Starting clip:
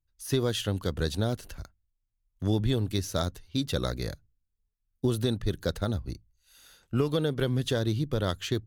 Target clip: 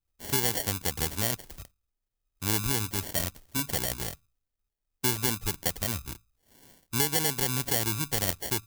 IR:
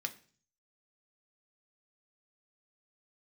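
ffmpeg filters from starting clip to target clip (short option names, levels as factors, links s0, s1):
-af "acrusher=samples=35:mix=1:aa=0.000001,crystalizer=i=6:c=0,volume=0.531"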